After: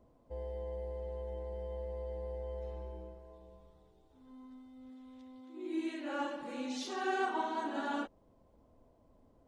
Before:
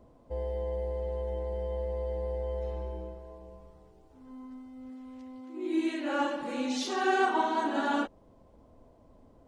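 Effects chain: 3.33–5.62 s: peaking EQ 3.6 kHz +12.5 dB 0.24 oct; trim -7.5 dB

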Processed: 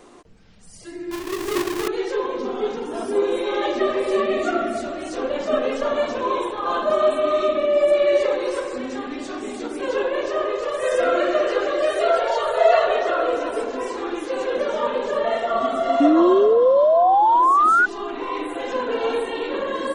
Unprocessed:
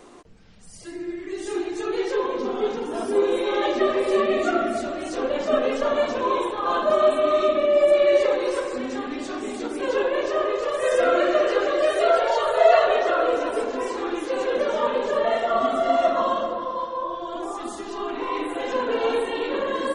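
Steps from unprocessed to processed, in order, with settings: 1.11–1.88 s: square wave that keeps the level; 16.00–17.86 s: painted sound rise 280–1500 Hz -15 dBFS

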